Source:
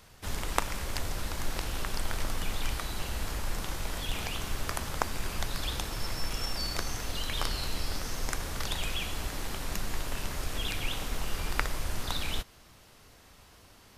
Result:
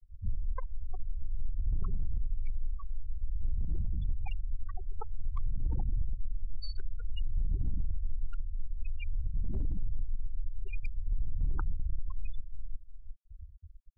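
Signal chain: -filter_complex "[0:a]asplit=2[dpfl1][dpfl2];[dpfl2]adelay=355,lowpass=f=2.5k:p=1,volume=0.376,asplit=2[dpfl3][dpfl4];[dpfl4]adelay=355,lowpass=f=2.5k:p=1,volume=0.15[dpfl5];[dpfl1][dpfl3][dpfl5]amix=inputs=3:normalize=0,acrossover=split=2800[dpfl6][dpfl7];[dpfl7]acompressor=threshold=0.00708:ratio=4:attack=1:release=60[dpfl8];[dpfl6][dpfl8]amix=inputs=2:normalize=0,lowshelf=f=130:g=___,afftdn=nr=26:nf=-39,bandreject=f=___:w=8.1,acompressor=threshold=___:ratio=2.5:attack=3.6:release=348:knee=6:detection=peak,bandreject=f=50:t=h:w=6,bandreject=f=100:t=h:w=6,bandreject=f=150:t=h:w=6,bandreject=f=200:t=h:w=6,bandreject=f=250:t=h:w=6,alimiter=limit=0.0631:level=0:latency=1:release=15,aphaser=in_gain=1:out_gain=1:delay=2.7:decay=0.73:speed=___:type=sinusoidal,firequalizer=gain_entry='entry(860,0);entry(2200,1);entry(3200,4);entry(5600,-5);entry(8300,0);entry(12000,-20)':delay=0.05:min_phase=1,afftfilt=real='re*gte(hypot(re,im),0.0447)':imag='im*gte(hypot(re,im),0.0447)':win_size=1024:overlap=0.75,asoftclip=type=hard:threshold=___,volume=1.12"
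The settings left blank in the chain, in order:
5, 3.2k, 0.01, 0.52, 0.0631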